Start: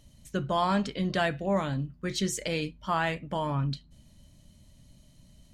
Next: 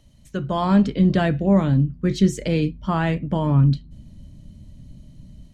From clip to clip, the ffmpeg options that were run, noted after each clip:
ffmpeg -i in.wav -filter_complex "[0:a]highshelf=frequency=6300:gain=-7.5,acrossover=split=390|1600[link_01][link_02][link_03];[link_01]dynaudnorm=framelen=390:gausssize=3:maxgain=12dB[link_04];[link_04][link_02][link_03]amix=inputs=3:normalize=0,volume=2dB" out.wav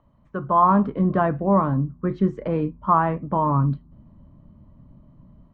ffmpeg -i in.wav -af "lowpass=frequency=1100:width_type=q:width=5,lowshelf=frequency=130:gain=-8.5,volume=-1.5dB" out.wav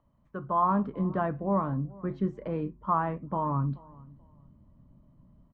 ffmpeg -i in.wav -filter_complex "[0:a]asplit=2[link_01][link_02];[link_02]adelay=432,lowpass=frequency=1200:poles=1,volume=-22dB,asplit=2[link_03][link_04];[link_04]adelay=432,lowpass=frequency=1200:poles=1,volume=0.26[link_05];[link_01][link_03][link_05]amix=inputs=3:normalize=0,volume=-8.5dB" out.wav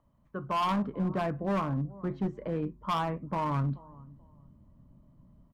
ffmpeg -i in.wav -af "asoftclip=type=hard:threshold=-25dB" out.wav

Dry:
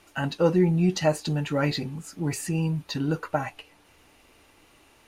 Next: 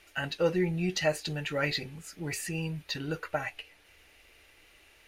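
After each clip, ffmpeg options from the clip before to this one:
ffmpeg -i in.wav -af "equalizer=frequency=125:width_type=o:width=1:gain=-7,equalizer=frequency=250:width_type=o:width=1:gain=-11,equalizer=frequency=1000:width_type=o:width=1:gain=-10,equalizer=frequency=2000:width_type=o:width=1:gain=5,equalizer=frequency=8000:width_type=o:width=1:gain=-4" out.wav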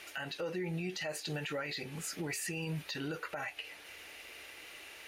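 ffmpeg -i in.wav -af "highpass=frequency=310:poles=1,acompressor=threshold=-40dB:ratio=4,alimiter=level_in=15dB:limit=-24dB:level=0:latency=1:release=45,volume=-15dB,volume=9.5dB" out.wav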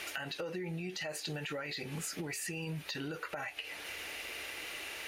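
ffmpeg -i in.wav -af "acompressor=threshold=-45dB:ratio=6,volume=8dB" out.wav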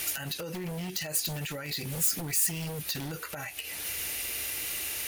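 ffmpeg -i in.wav -af "bass=frequency=250:gain=12,treble=frequency=4000:gain=6,aeval=exprs='0.0299*(abs(mod(val(0)/0.0299+3,4)-2)-1)':channel_layout=same,aemphasis=mode=production:type=50fm" out.wav

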